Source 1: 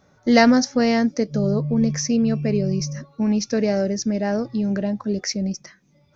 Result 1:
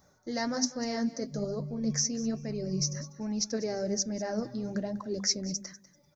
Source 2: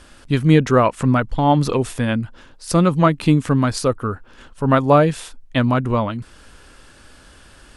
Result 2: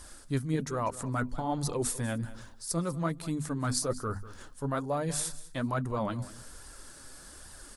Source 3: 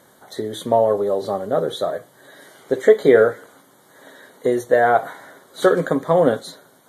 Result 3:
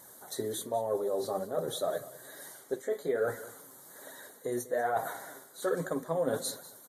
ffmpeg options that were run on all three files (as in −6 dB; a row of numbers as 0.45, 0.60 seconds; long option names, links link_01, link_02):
-af "equalizer=frequency=2800:width_type=o:width=0.78:gain=-10.5,bandreject=frequency=50:width_type=h:width=6,bandreject=frequency=100:width_type=h:width=6,bandreject=frequency=150:width_type=h:width=6,bandreject=frequency=200:width_type=h:width=6,bandreject=frequency=250:width_type=h:width=6,areverse,acompressor=threshold=-24dB:ratio=5,areverse,flanger=delay=1:depth=6.7:regen=44:speed=1.2:shape=sinusoidal,crystalizer=i=2.5:c=0,aecho=1:1:195|390:0.141|0.024,volume=-1.5dB"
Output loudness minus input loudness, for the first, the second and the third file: −11.0, −15.0, −15.0 LU